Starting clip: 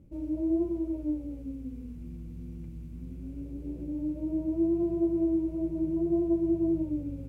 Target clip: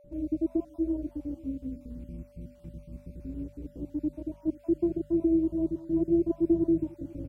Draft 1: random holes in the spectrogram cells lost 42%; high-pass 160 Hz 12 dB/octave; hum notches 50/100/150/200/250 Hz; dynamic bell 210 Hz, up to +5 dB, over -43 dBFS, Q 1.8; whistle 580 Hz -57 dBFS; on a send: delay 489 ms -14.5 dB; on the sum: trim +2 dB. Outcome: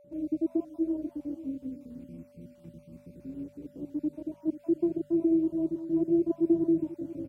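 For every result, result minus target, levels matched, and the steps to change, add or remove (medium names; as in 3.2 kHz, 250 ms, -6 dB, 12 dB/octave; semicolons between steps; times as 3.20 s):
125 Hz band -5.5 dB; echo-to-direct +7 dB
remove: high-pass 160 Hz 12 dB/octave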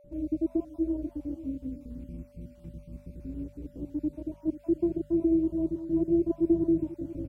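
echo-to-direct +7 dB
change: delay 489 ms -21.5 dB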